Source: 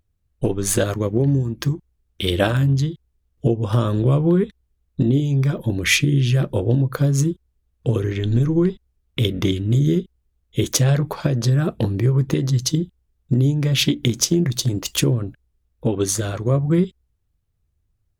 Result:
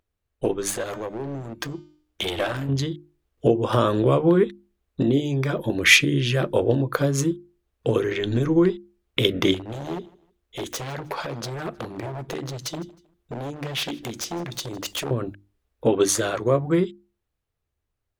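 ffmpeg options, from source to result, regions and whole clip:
ffmpeg -i in.wav -filter_complex "[0:a]asettb=1/sr,asplit=3[link_01][link_02][link_03];[link_01]atrim=end=0.704[link_04];[link_02]atrim=start=0.7:end=2.69,asetpts=PTS-STARTPTS,afade=type=in:duration=0.004:curve=qsin,afade=type=out:start_time=1.986:duration=0.004:curve=qsin,bandreject=frequency=303.5:width_type=h:width=4,bandreject=frequency=607:width_type=h:width=4,bandreject=frequency=910.5:width_type=h:width=4,bandreject=frequency=1214:width_type=h:width=4,bandreject=frequency=1517.5:width_type=h:width=4,bandreject=frequency=1821:width_type=h:width=4,bandreject=frequency=2124.5:width_type=h:width=4,bandreject=frequency=2428:width_type=h:width=4,bandreject=frequency=2731.5:width_type=h:width=4,bandreject=frequency=3035:width_type=h:width=4,bandreject=frequency=3338.5:width_type=h:width=4,bandreject=frequency=3642:width_type=h:width=4,bandreject=frequency=3945.5:width_type=h:width=4,bandreject=frequency=4249:width_type=h:width=4,bandreject=frequency=4552.5:width_type=h:width=4,bandreject=frequency=4856:width_type=h:width=4,bandreject=frequency=5159.5:width_type=h:width=4,bandreject=frequency=5463:width_type=h:width=4,bandreject=frequency=5766.5:width_type=h:width=4,bandreject=frequency=6070:width_type=h:width=4,bandreject=frequency=6373.5:width_type=h:width=4,bandreject=frequency=6677:width_type=h:width=4,bandreject=frequency=6980.5:width_type=h:width=4,bandreject=frequency=7284:width_type=h:width=4,bandreject=frequency=7587.5:width_type=h:width=4,bandreject=frequency=7891:width_type=h:width=4,bandreject=frequency=8194.5:width_type=h:width=4,acompressor=threshold=-21dB:ratio=4:attack=3.2:release=140:knee=1:detection=peak,aeval=exprs='clip(val(0),-1,0.0562)':channel_layout=same[link_05];[link_03]atrim=start=2.686[link_06];[link_04][link_05]acrossfade=duration=0.004:curve1=hsin:curve2=qsin[link_07];[link_07][link_06]acrossfade=duration=0.004:curve1=qsin:curve2=hsin,asettb=1/sr,asplit=3[link_08][link_09][link_10];[link_08]atrim=end=9.544[link_11];[link_09]atrim=start=9.54:end=15.11,asetpts=PTS-STARTPTS,afade=type=in:duration=0.004:curve=qsin,afade=type=out:start_time=5.566:duration=0.004:curve=qsin,acompressor=threshold=-29dB:ratio=2.5:attack=3.2:release=140:knee=1:detection=peak,aeval=exprs='0.0631*(abs(mod(val(0)/0.0631+3,4)-2)-1)':channel_layout=same,aecho=1:1:157|314:0.0708|0.0219,atrim=end_sample=245637[link_12];[link_10]atrim=start=15.106[link_13];[link_11][link_12]acrossfade=duration=0.004:curve1=hsin:curve2=qsin[link_14];[link_14][link_13]acrossfade=duration=0.004:curve1=qsin:curve2=hsin,bass=frequency=250:gain=-13,treble=frequency=4000:gain=-6,bandreject=frequency=50:width_type=h:width=6,bandreject=frequency=100:width_type=h:width=6,bandreject=frequency=150:width_type=h:width=6,bandreject=frequency=200:width_type=h:width=6,bandreject=frequency=250:width_type=h:width=6,bandreject=frequency=300:width_type=h:width=6,bandreject=frequency=350:width_type=h:width=6,dynaudnorm=framelen=280:gausssize=13:maxgain=4.5dB,volume=1.5dB" out.wav

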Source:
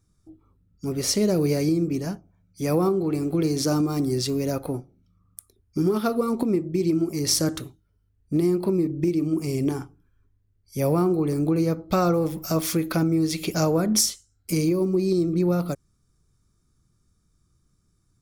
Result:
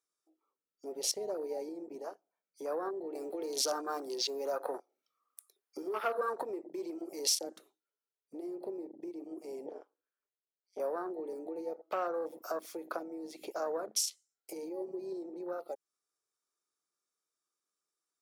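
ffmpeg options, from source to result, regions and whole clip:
ffmpeg -i in.wav -filter_complex "[0:a]asettb=1/sr,asplit=3[link_01][link_02][link_03];[link_01]atrim=end=3.154[link_04];[link_02]atrim=start=3.15:end=7.35,asetpts=PTS-STARTPTS,afade=type=in:duration=0.004:curve=qsin,afade=type=out:start_time=4.196:duration=0.004:curve=qsin,asplit=2[link_05][link_06];[link_06]highpass=frequency=720:poles=1,volume=15dB,asoftclip=type=tanh:threshold=-9dB[link_07];[link_05][link_07]amix=inputs=2:normalize=0,lowpass=frequency=6900:poles=1,volume=-6dB,highshelf=frequency=11000:gain=10[link_08];[link_03]atrim=start=7.346[link_09];[link_04][link_08]acrossfade=duration=0.004:curve1=hsin:curve2=qsin[link_10];[link_10][link_09]acrossfade=duration=0.004:curve1=qsin:curve2=hsin,asettb=1/sr,asplit=3[link_11][link_12][link_13];[link_11]atrim=end=9.664[link_14];[link_12]atrim=start=9.66:end=10.8,asetpts=PTS-STARTPTS,afade=type=in:duration=0.004:curve=qsin,afade=type=out:start_time=1.136:duration=0.004:curve=qsin,highpass=200,lowpass=4200,tremolo=f=190:d=0.919[link_15];[link_13]atrim=start=10.796[link_16];[link_14][link_15]acrossfade=duration=0.004:curve1=hsin:curve2=qsin[link_17];[link_17][link_16]acrossfade=duration=0.004:curve1=qsin:curve2=hsin,acompressor=threshold=-34dB:ratio=4,highpass=frequency=450:width=0.5412,highpass=frequency=450:width=1.3066,afwtdn=0.00891,volume=3.5dB" out.wav

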